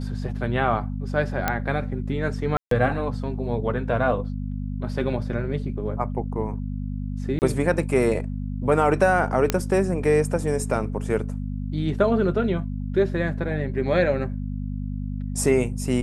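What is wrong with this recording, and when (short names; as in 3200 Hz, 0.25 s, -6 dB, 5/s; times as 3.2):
hum 50 Hz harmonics 5 -29 dBFS
1.48 pop -7 dBFS
2.57–2.71 gap 0.143 s
7.39–7.42 gap 29 ms
9.5 pop -5 dBFS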